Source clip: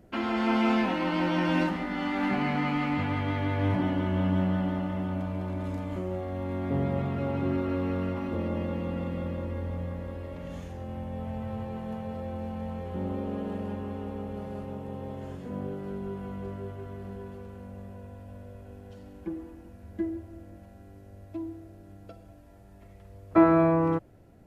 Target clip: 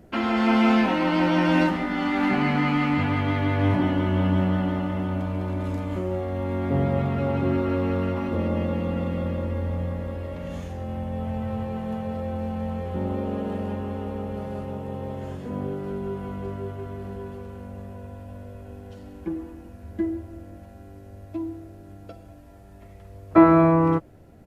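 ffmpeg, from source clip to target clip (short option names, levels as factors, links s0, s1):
-filter_complex "[0:a]asplit=2[s0][s1];[s1]adelay=13,volume=0.237[s2];[s0][s2]amix=inputs=2:normalize=0,volume=1.78"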